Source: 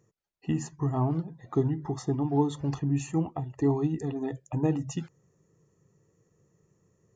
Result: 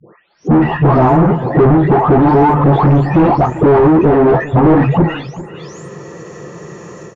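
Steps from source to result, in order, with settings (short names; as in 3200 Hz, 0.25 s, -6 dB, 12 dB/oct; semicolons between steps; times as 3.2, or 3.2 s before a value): spectral delay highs late, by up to 0.55 s; AGC gain up to 10 dB; overdrive pedal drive 39 dB, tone 2500 Hz, clips at -5.5 dBFS; on a send: echo 0.393 s -16 dB; on the sum: treble ducked by the level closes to 1100 Hz, closed at -22.5 dBFS; gain +4 dB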